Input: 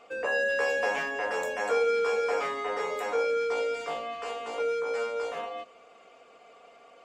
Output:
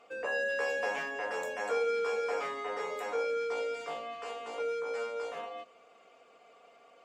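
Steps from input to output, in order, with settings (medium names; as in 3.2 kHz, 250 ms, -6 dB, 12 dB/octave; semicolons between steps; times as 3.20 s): bass shelf 62 Hz -5.5 dB; trim -5 dB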